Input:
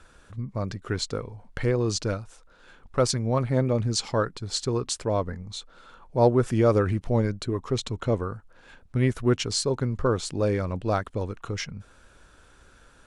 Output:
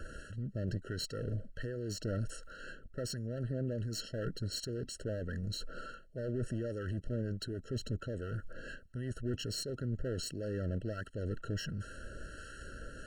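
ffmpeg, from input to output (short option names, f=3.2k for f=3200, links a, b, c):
-filter_complex "[0:a]areverse,acompressor=threshold=-37dB:ratio=8,areverse,alimiter=level_in=12.5dB:limit=-24dB:level=0:latency=1:release=12,volume=-12.5dB,acrossover=split=1100[a][b];[a]aeval=exprs='val(0)*(1-0.5/2+0.5/2*cos(2*PI*1.4*n/s))':c=same[c];[b]aeval=exprs='val(0)*(1-0.5/2-0.5/2*cos(2*PI*1.4*n/s))':c=same[d];[c][d]amix=inputs=2:normalize=0,aeval=exprs='clip(val(0),-1,0.00473)':c=same,afftfilt=real='re*eq(mod(floor(b*sr/1024/650),2),0)':imag='im*eq(mod(floor(b*sr/1024/650),2),0)':win_size=1024:overlap=0.75,volume=10.5dB"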